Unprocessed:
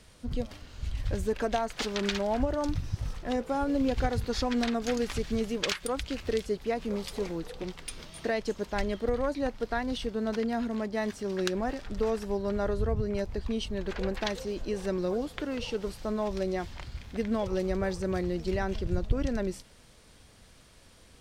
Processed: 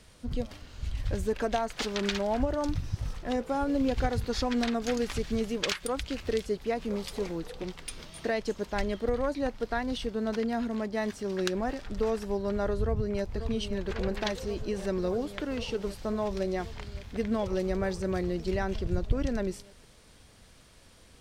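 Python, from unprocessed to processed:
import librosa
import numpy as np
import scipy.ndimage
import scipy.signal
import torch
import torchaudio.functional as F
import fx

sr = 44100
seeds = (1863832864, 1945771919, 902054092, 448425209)

y = fx.echo_throw(x, sr, start_s=12.8, length_s=0.56, ms=540, feedback_pct=85, wet_db=-9.5)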